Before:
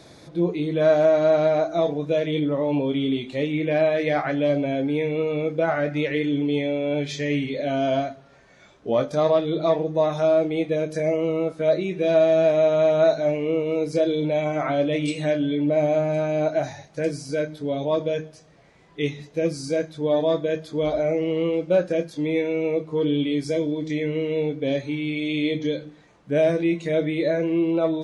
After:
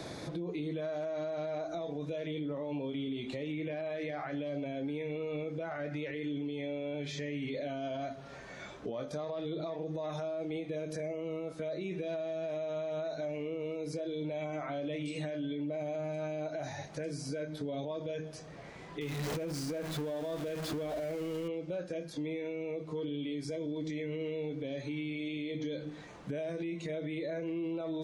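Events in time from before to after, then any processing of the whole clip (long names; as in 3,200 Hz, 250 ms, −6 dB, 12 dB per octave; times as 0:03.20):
0:19.01–0:21.48: converter with a step at zero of −27.5 dBFS
whole clip: downward compressor 4 to 1, threshold −33 dBFS; brickwall limiter −32 dBFS; multiband upward and downward compressor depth 40%; level +1.5 dB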